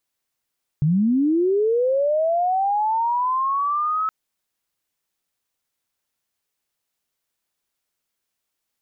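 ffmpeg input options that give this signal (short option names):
-f lavfi -i "aevalsrc='pow(10,(-15-4.5*t/3.27)/20)*sin(2*PI*(140*t+1160*t*t/(2*3.27)))':d=3.27:s=44100"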